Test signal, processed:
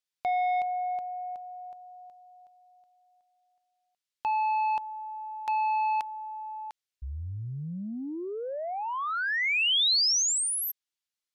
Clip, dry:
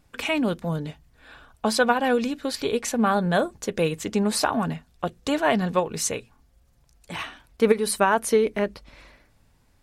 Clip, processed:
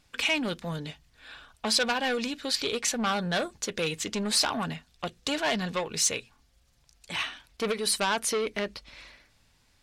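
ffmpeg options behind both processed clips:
-af "asoftclip=type=tanh:threshold=0.112,equalizer=f=4100:t=o:w=2.8:g=12,volume=0.501"

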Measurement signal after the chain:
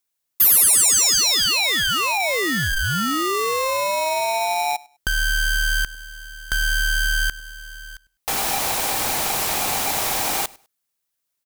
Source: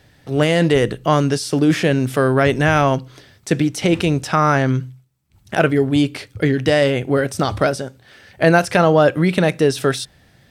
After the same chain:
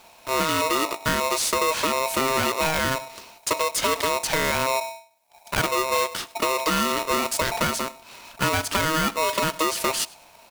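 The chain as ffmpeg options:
-filter_complex "[0:a]acrusher=bits=5:mode=log:mix=0:aa=0.000001,acompressor=threshold=0.112:ratio=6,asoftclip=type=tanh:threshold=0.211,highshelf=f=5700:g=9,asplit=2[s0][s1];[s1]aecho=0:1:101|202:0.0708|0.0149[s2];[s0][s2]amix=inputs=2:normalize=0,aeval=exprs='val(0)*sgn(sin(2*PI*790*n/s))':c=same"

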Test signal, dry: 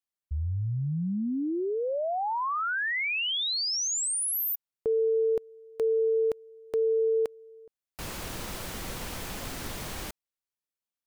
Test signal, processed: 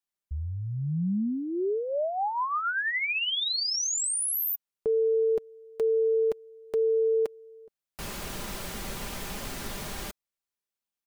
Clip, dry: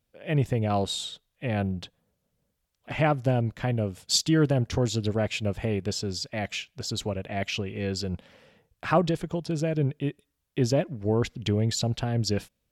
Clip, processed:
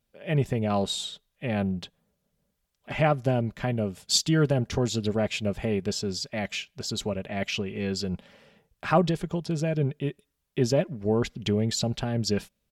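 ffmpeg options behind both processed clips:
-af "aecho=1:1:5:0.35"

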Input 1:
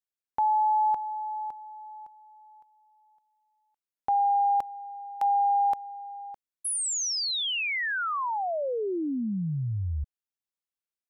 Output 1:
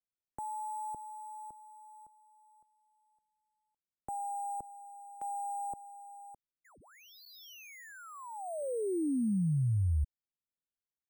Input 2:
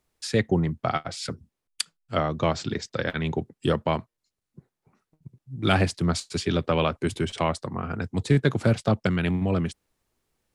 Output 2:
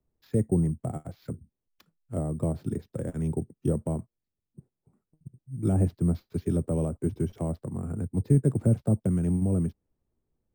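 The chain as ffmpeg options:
-filter_complex "[0:a]lowpass=f=1700:p=1,tiltshelf=f=750:g=9.5,acrossover=split=300|770[s0][s1][s2];[s2]acompressor=threshold=0.00891:ratio=6:attack=1.5:release=78:knee=1:detection=peak[s3];[s0][s1][s3]amix=inputs=3:normalize=0,acrusher=samples=5:mix=1:aa=0.000001,volume=0.376"

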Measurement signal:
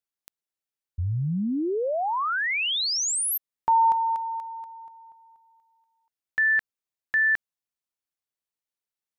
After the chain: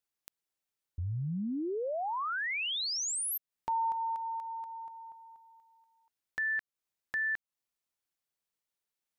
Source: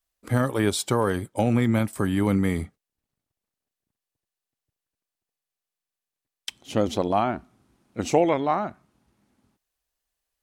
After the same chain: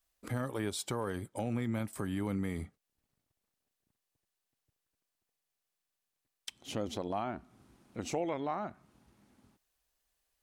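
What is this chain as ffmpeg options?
-af "acompressor=threshold=0.00794:ratio=2:attack=0.81:release=326:knee=6:detection=peak,volume=1.19"

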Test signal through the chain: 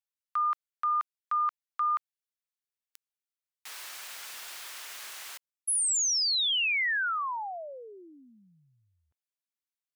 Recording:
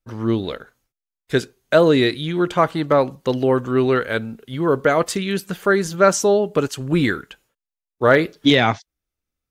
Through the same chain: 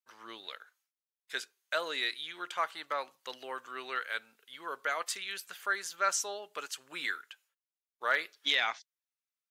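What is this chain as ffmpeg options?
-af "highpass=1300,volume=0.376"

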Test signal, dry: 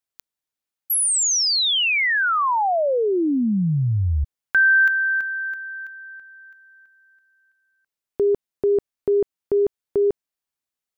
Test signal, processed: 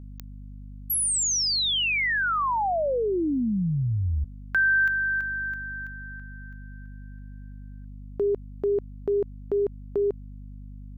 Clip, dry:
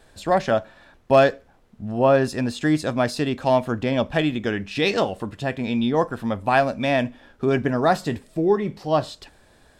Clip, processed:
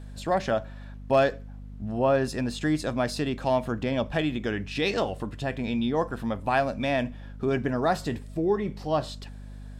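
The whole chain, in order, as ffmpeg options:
-filter_complex "[0:a]aeval=exprs='val(0)+0.0141*(sin(2*PI*50*n/s)+sin(2*PI*2*50*n/s)/2+sin(2*PI*3*50*n/s)/3+sin(2*PI*4*50*n/s)/4+sin(2*PI*5*50*n/s)/5)':c=same,asplit=2[s0][s1];[s1]acompressor=threshold=0.0501:ratio=6:attack=9.3:release=59,volume=0.75[s2];[s0][s2]amix=inputs=2:normalize=0,volume=0.422"

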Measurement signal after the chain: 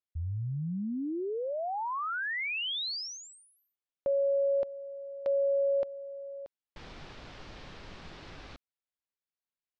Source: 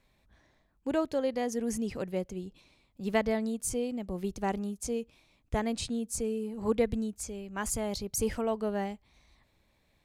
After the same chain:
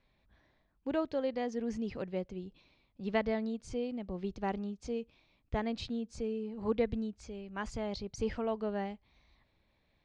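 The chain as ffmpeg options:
-af "lowpass=f=4800:w=0.5412,lowpass=f=4800:w=1.3066,volume=0.668"

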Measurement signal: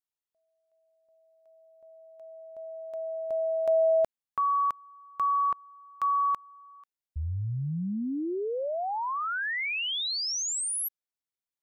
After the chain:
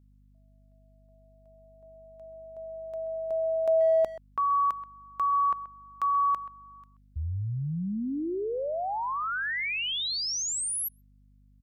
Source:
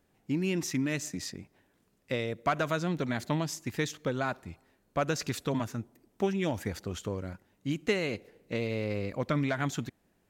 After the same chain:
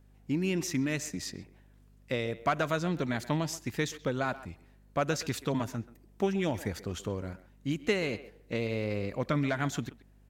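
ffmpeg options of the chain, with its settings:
-filter_complex "[0:a]aeval=exprs='val(0)+0.00126*(sin(2*PI*50*n/s)+sin(2*PI*2*50*n/s)/2+sin(2*PI*3*50*n/s)/3+sin(2*PI*4*50*n/s)/4+sin(2*PI*5*50*n/s)/5)':c=same,asplit=2[s0][s1];[s1]adelay=130,highpass=300,lowpass=3400,asoftclip=type=hard:threshold=0.075,volume=0.178[s2];[s0][s2]amix=inputs=2:normalize=0"

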